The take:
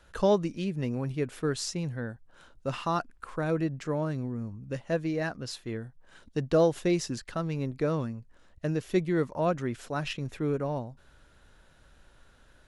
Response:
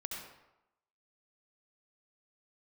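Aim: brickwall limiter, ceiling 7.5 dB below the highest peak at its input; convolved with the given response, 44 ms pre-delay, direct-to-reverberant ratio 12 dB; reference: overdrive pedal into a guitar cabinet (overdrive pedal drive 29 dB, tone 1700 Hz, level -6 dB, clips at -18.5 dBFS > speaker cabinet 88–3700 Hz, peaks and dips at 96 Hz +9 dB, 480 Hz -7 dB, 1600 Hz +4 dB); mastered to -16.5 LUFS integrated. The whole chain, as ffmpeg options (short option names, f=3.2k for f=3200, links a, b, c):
-filter_complex "[0:a]alimiter=limit=-20.5dB:level=0:latency=1,asplit=2[a][b];[1:a]atrim=start_sample=2205,adelay=44[c];[b][c]afir=irnorm=-1:irlink=0,volume=-12dB[d];[a][d]amix=inputs=2:normalize=0,asplit=2[e][f];[f]highpass=f=720:p=1,volume=29dB,asoftclip=type=tanh:threshold=-18.5dB[g];[e][g]amix=inputs=2:normalize=0,lowpass=f=1.7k:p=1,volume=-6dB,highpass=88,equalizer=f=96:t=q:w=4:g=9,equalizer=f=480:t=q:w=4:g=-7,equalizer=f=1.6k:t=q:w=4:g=4,lowpass=f=3.7k:w=0.5412,lowpass=f=3.7k:w=1.3066,volume=12dB"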